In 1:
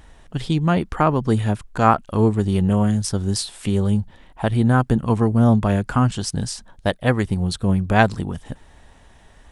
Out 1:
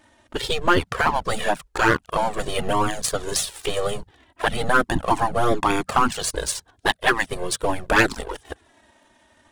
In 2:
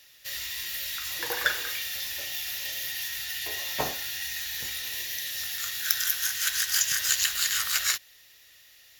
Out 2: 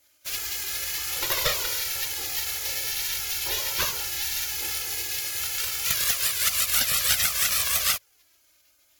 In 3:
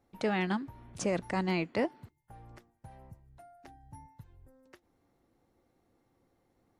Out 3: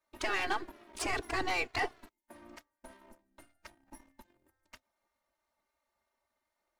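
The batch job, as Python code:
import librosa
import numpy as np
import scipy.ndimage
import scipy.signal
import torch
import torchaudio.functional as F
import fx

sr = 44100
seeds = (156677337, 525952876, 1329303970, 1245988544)

y = np.where(x < 0.0, 10.0 ** (-3.0 / 20.0) * x, x)
y = fx.spec_gate(y, sr, threshold_db=-10, keep='weak')
y = fx.leveller(y, sr, passes=2)
y = fx.env_flanger(y, sr, rest_ms=3.3, full_db=-11.0)
y = np.clip(10.0 ** (13.5 / 20.0) * y, -1.0, 1.0) / 10.0 ** (13.5 / 20.0)
y = F.gain(torch.from_numpy(y), 5.0).numpy()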